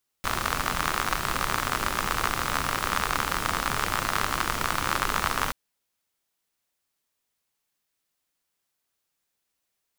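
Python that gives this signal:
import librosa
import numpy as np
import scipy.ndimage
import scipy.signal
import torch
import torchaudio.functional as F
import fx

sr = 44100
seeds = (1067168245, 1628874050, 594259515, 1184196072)

y = fx.rain(sr, seeds[0], length_s=5.28, drops_per_s=64.0, hz=1200.0, bed_db=-3.0)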